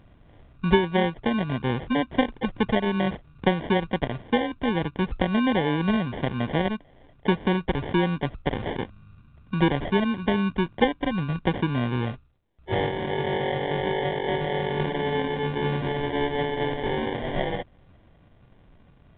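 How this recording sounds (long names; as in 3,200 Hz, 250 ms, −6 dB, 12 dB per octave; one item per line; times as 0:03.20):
aliases and images of a low sample rate 1,300 Hz, jitter 0%
mu-law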